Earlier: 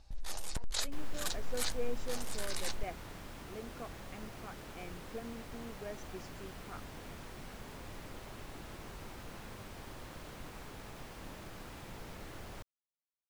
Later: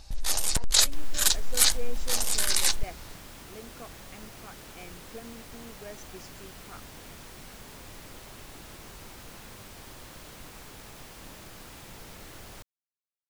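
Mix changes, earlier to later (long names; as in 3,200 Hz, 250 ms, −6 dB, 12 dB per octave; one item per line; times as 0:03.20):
first sound +9.5 dB
master: add high-shelf EQ 3,200 Hz +9.5 dB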